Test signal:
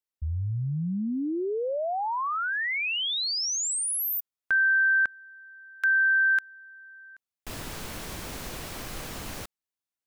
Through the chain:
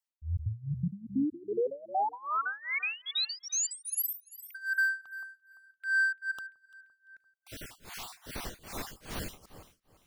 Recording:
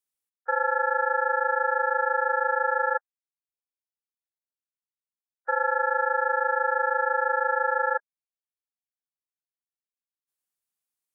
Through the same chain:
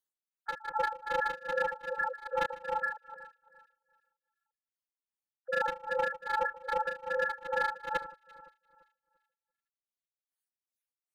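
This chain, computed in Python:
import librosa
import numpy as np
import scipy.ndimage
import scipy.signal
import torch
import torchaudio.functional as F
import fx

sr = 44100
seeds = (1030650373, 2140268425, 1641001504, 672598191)

p1 = fx.spec_dropout(x, sr, seeds[0], share_pct=41)
p2 = fx.rider(p1, sr, range_db=4, speed_s=0.5)
p3 = p1 + (p2 * librosa.db_to_amplitude(2.0))
p4 = np.clip(p3, -10.0 ** (-15.0 / 20.0), 10.0 ** (-15.0 / 20.0))
p5 = fx.echo_alternate(p4, sr, ms=171, hz=1500.0, feedback_pct=55, wet_db=-12.0)
p6 = p5 * (1.0 - 0.94 / 2.0 + 0.94 / 2.0 * np.cos(2.0 * np.pi * 2.5 * (np.arange(len(p5)) / sr)))
y = p6 * librosa.db_to_amplitude(-7.5)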